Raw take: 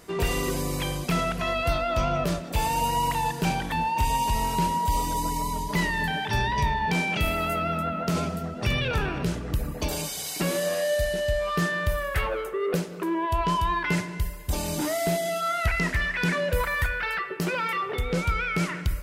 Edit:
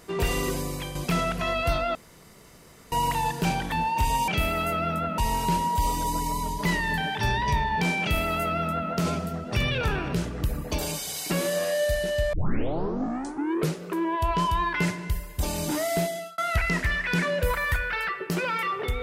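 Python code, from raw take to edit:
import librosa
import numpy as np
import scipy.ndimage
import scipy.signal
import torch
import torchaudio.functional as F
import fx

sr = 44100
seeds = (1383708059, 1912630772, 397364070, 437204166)

y = fx.edit(x, sr, fx.fade_out_to(start_s=0.45, length_s=0.5, floor_db=-7.5),
    fx.room_tone_fill(start_s=1.95, length_s=0.97),
    fx.duplicate(start_s=7.11, length_s=0.9, to_s=4.28),
    fx.tape_start(start_s=11.43, length_s=1.46),
    fx.fade_out_span(start_s=15.09, length_s=0.39), tone=tone)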